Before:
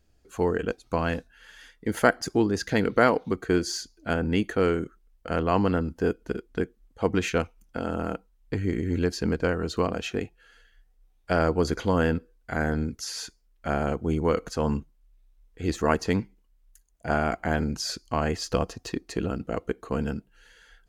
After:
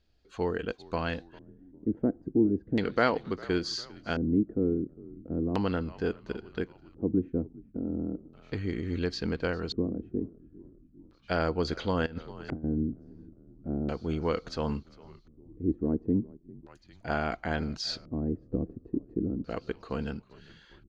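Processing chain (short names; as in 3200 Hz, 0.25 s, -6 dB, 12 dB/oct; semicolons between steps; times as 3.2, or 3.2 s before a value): frequency-shifting echo 0.401 s, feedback 60%, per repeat -55 Hz, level -21.5 dB; LFO low-pass square 0.36 Hz 300–4100 Hz; 12.06–12.64 negative-ratio compressor -30 dBFS, ratio -0.5; gain -5.5 dB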